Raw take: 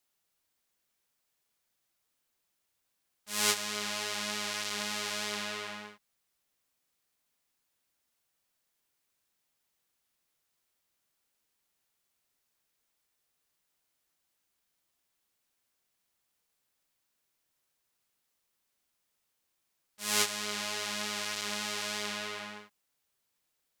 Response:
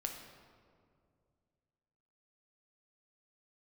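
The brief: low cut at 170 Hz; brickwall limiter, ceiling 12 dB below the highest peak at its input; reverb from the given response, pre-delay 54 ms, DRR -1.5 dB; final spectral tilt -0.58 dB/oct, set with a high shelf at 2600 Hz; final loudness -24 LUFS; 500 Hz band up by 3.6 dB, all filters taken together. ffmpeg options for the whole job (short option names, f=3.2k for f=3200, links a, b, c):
-filter_complex "[0:a]highpass=170,equalizer=f=500:t=o:g=4.5,highshelf=f=2.6k:g=7,alimiter=limit=-13.5dB:level=0:latency=1,asplit=2[a][b];[1:a]atrim=start_sample=2205,adelay=54[c];[b][c]afir=irnorm=-1:irlink=0,volume=2dB[d];[a][d]amix=inputs=2:normalize=0,volume=2.5dB"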